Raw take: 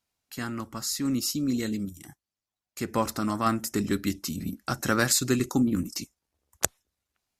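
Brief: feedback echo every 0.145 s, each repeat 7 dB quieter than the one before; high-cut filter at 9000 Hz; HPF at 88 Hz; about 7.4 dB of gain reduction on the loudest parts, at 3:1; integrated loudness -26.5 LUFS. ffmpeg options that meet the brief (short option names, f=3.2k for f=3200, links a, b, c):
-af "highpass=88,lowpass=9k,acompressor=threshold=-31dB:ratio=3,aecho=1:1:145|290|435|580|725:0.447|0.201|0.0905|0.0407|0.0183,volume=7.5dB"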